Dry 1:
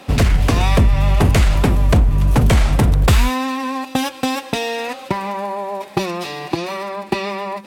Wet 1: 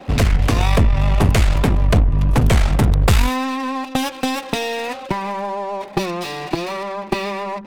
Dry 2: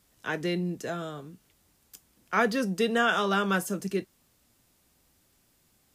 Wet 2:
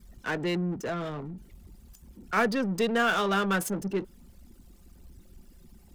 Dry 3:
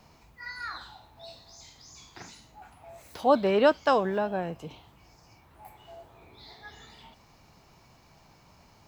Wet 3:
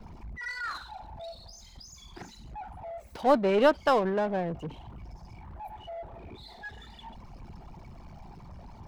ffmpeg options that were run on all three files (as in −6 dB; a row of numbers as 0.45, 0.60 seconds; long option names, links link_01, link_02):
-af "aeval=exprs='val(0)+0.5*0.0316*sgn(val(0))':channel_layout=same,anlmdn=39.8,aeval=exprs='0.75*(cos(1*acos(clip(val(0)/0.75,-1,1)))-cos(1*PI/2))+0.211*(cos(2*acos(clip(val(0)/0.75,-1,1)))-cos(2*PI/2))':channel_layout=same,volume=-2dB"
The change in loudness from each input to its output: −1.0, 0.0, −2.0 LU